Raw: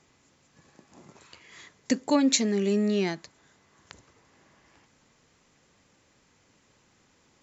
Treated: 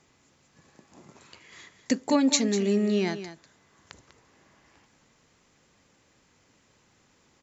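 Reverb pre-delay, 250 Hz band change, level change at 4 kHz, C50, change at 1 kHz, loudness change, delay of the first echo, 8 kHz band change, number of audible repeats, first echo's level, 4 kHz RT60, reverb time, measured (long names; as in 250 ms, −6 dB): no reverb audible, +0.5 dB, 0.0 dB, no reverb audible, +0.5 dB, +0.5 dB, 196 ms, can't be measured, 1, −12.0 dB, no reverb audible, no reverb audible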